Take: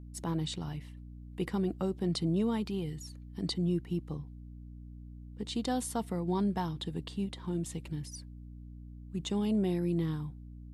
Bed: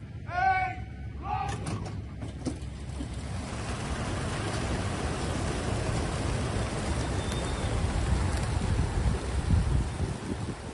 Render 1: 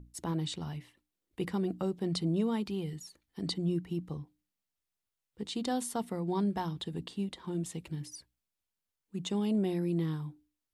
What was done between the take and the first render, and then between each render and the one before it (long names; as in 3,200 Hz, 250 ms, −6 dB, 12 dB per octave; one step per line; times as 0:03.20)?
mains-hum notches 60/120/180/240/300 Hz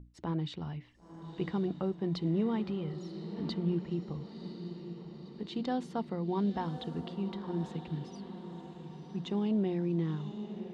high-frequency loss of the air 210 metres
on a send: feedback delay with all-pass diffusion 1,015 ms, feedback 57%, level −10 dB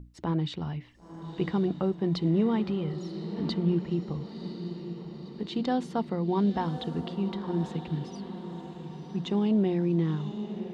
level +5.5 dB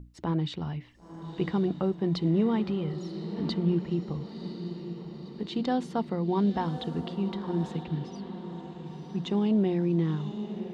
0:07.83–0:08.86: high-frequency loss of the air 52 metres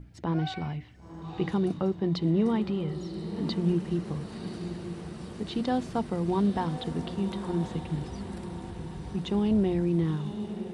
mix in bed −15 dB